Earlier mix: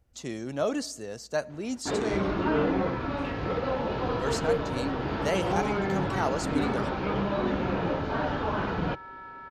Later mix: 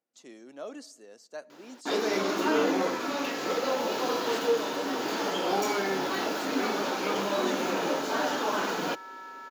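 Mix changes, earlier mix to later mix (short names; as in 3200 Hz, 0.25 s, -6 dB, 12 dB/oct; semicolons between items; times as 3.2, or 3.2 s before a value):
speech -12.0 dB; first sound: remove air absorption 330 m; master: add HPF 240 Hz 24 dB/oct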